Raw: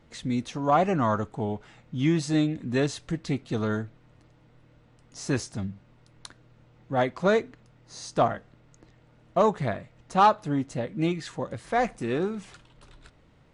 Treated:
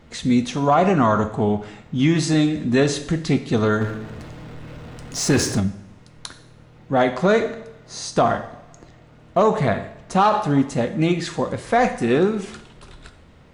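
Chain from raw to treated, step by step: two-slope reverb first 0.64 s, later 1.6 s, DRR 8 dB; limiter -17 dBFS, peak gain reduction 9 dB; 3.81–5.6 power-law curve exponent 0.7; gain +9 dB

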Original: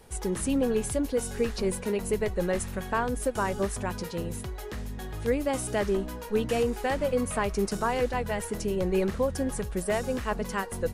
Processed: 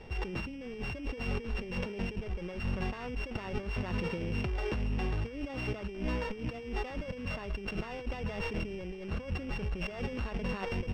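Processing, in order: sample sorter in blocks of 16 samples; negative-ratio compressor -36 dBFS, ratio -1; air absorption 190 m

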